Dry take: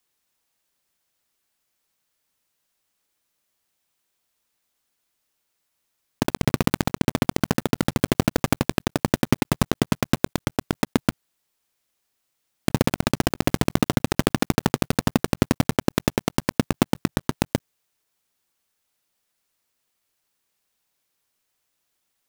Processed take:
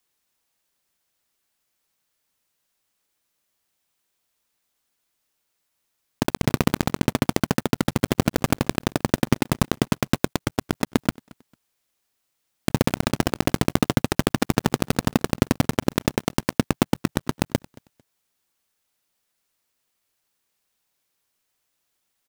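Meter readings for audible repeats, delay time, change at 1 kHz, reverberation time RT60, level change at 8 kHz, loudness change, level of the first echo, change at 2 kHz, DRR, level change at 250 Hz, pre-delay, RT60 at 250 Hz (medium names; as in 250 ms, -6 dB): 1, 224 ms, 0.0 dB, no reverb, 0.0 dB, 0.0 dB, -24.0 dB, 0.0 dB, no reverb, 0.0 dB, no reverb, no reverb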